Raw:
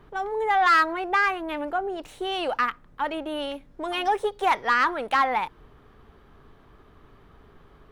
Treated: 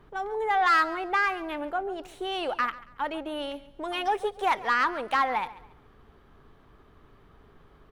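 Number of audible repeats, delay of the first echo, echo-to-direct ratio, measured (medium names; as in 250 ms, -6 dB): 2, 139 ms, -17.5 dB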